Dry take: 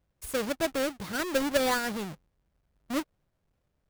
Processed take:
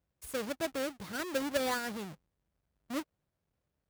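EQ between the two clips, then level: high-pass 51 Hz; -6.0 dB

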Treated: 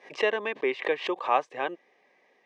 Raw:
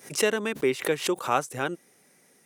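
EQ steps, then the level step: high-pass 540 Hz 12 dB/octave; Butterworth band-stop 1.4 kHz, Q 4.3; Bessel low-pass 2.3 kHz, order 4; +3.5 dB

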